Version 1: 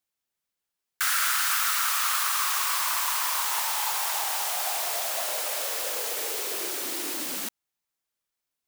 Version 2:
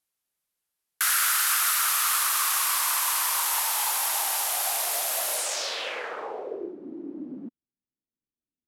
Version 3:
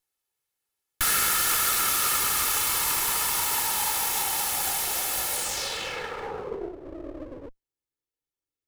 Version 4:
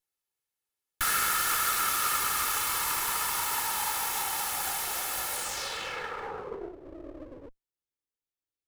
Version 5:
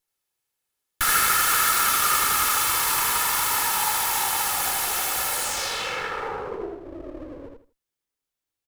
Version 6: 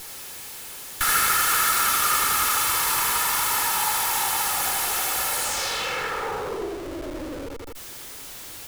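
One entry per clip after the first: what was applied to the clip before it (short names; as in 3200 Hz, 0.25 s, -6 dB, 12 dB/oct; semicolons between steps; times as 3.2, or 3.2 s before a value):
low-pass sweep 12000 Hz -> 270 Hz, 5.32–6.76
minimum comb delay 2.3 ms; gain +1.5 dB
dynamic EQ 1300 Hz, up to +6 dB, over -44 dBFS, Q 1.1; gain -5.5 dB
feedback echo 79 ms, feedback 23%, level -4 dB; gain +5.5 dB
zero-crossing step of -30 dBFS; gain -1.5 dB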